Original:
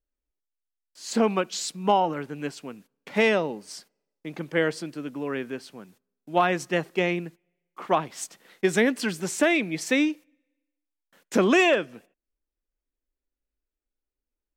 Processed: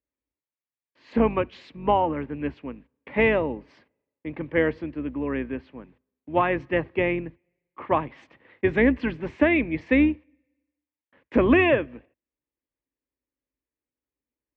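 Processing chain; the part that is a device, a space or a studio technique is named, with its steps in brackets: sub-octave bass pedal (octaver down 2 oct, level -4 dB; speaker cabinet 69–2300 Hz, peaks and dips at 83 Hz -10 dB, 190 Hz -9 dB, 260 Hz +3 dB, 400 Hz -4 dB, 720 Hz -7 dB, 1400 Hz -10 dB); gain +4 dB

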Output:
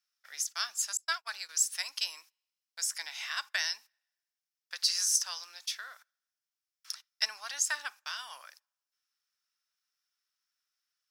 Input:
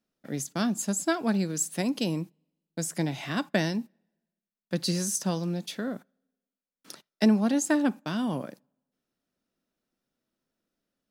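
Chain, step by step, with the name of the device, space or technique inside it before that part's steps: 0.97–1.49 gate -27 dBFS, range -38 dB; headphones lying on a table (HPF 1200 Hz 24 dB/oct; bell 5400 Hz +10 dB 0.35 oct)

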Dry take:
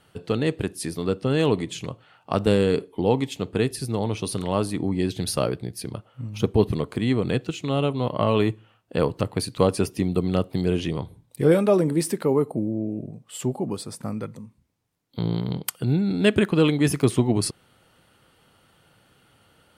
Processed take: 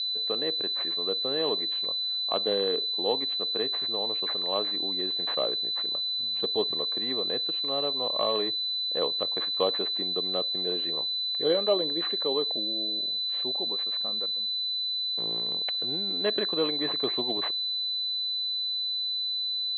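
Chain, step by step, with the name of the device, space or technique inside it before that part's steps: toy sound module (decimation joined by straight lines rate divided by 4×; pulse-width modulation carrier 4000 Hz; speaker cabinet 620–4000 Hz, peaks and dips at 880 Hz -6 dB, 1400 Hz -9 dB, 2400 Hz -4 dB, 3500 Hz +4 dB)

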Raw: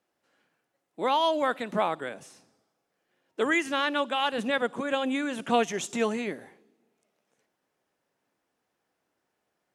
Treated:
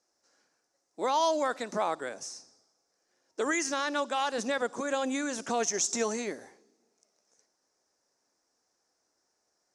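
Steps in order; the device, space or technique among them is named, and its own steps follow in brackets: LPF 5700 Hz 12 dB/oct; over-bright horn tweeter (resonant high shelf 4200 Hz +11 dB, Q 3; limiter -18 dBFS, peak gain reduction 7 dB); bell 150 Hz -9 dB 1.3 oct

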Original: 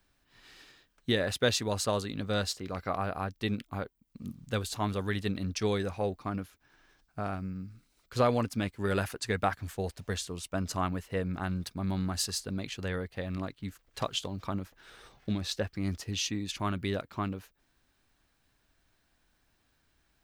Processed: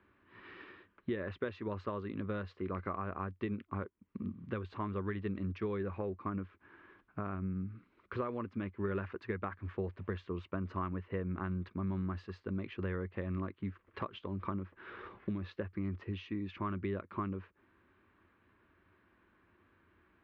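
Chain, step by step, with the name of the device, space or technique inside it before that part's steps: bass amplifier (compressor 5:1, threshold -43 dBFS, peak gain reduction 20 dB; speaker cabinet 86–2400 Hz, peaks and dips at 92 Hz +7 dB, 140 Hz -10 dB, 190 Hz +5 dB, 360 Hz +9 dB, 740 Hz -8 dB, 1100 Hz +7 dB); gain +5 dB

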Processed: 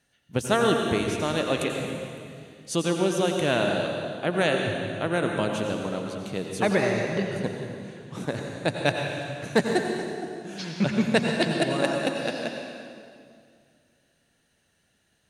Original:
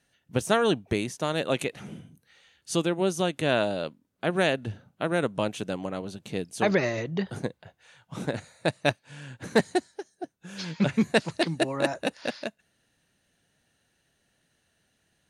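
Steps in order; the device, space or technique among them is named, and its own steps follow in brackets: stairwell (reverb RT60 2.2 s, pre-delay 81 ms, DRR 2 dB)

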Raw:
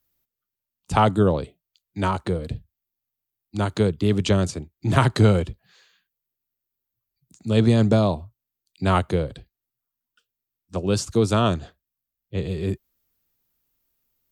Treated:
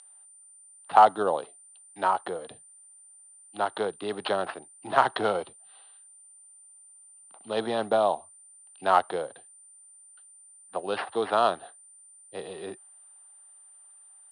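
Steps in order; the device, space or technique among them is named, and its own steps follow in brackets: toy sound module (decimation joined by straight lines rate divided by 6×; pulse-width modulation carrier 9100 Hz; speaker cabinet 660–5000 Hz, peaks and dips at 770 Hz +8 dB, 2300 Hz -9 dB, 3900 Hz +4 dB); 5.33–7.5 notch 1700 Hz, Q 5.2; gain +1 dB

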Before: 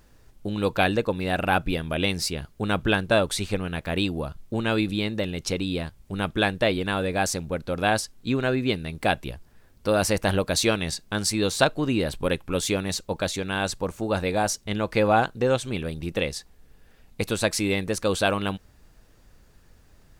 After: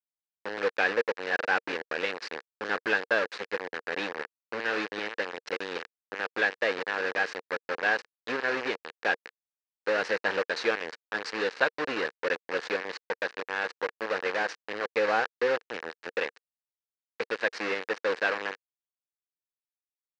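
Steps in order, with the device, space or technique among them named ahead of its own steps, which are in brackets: hand-held game console (bit-crush 4-bit; speaker cabinet 420–4300 Hz, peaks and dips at 470 Hz +7 dB, 660 Hz -6 dB, 1700 Hz +9 dB, 3400 Hz -8 dB); gain -5.5 dB

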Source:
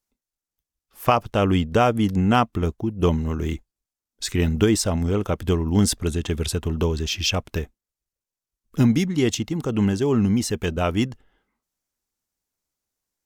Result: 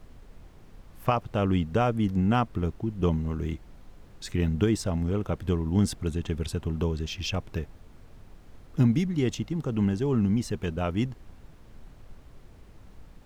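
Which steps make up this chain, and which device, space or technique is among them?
car interior (bell 140 Hz +5.5 dB 0.97 oct; high shelf 4300 Hz -7.5 dB; brown noise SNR 18 dB); gain -7 dB

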